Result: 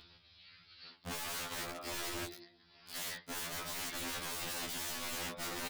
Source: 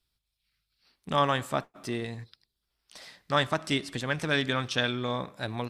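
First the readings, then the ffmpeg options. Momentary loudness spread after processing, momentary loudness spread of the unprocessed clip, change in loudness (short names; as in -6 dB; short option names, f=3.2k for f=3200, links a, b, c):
18 LU, 13 LU, -10.0 dB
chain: -filter_complex "[0:a]aecho=1:1:139|278|417:0.0631|0.0284|0.0128,aresample=11025,asoftclip=type=hard:threshold=-28.5dB,aresample=44100,highpass=f=61:p=1,asplit=2[a][b];[b]adelay=29,volume=-11dB[c];[a][c]amix=inputs=2:normalize=0,areverse,acompressor=threshold=-43dB:ratio=5,areverse,aeval=exprs='(mod(200*val(0)+1,2)-1)/200':c=same,acompressor=mode=upward:threshold=-59dB:ratio=2.5,afftfilt=real='re*2*eq(mod(b,4),0)':imag='im*2*eq(mod(b,4),0)':win_size=2048:overlap=0.75,volume=13dB"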